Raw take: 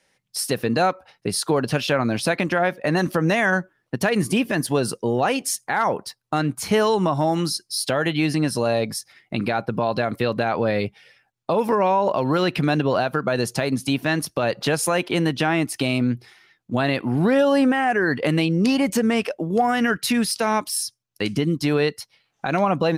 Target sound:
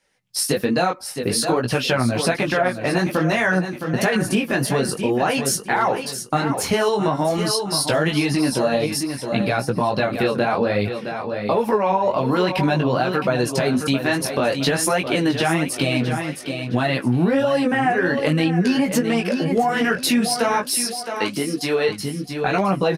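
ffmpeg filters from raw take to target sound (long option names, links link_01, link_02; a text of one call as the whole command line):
ffmpeg -i in.wav -filter_complex "[0:a]flanger=delay=15.5:depth=6.9:speed=0.53,asplit=2[link_01][link_02];[link_02]aecho=0:1:665|1330|1995|2660:0.316|0.101|0.0324|0.0104[link_03];[link_01][link_03]amix=inputs=2:normalize=0,dynaudnorm=framelen=190:gausssize=3:maxgain=8dB,flanger=delay=0.7:depth=7.9:regen=57:speed=1.2:shape=triangular,acompressor=threshold=-21dB:ratio=3,asettb=1/sr,asplit=3[link_04][link_05][link_06];[link_04]atrim=end=20.704[link_07];[link_05]atrim=start=20.7:end=21.89,asetpts=PTS-STARTPTS,afade=type=in:duration=0.004:curve=qsin,afade=type=out:start_time=1.186:duration=0.004:curve=qsin,highpass=260[link_08];[link_06]atrim=start=21.886[link_09];[link_07][link_08]acrossfade=duration=0.004:curve1=hsin:curve2=qsin[link_10];[link_10][link_09]acrossfade=duration=0.004:curve1=qsin:curve2=hsin,volume=4.5dB" out.wav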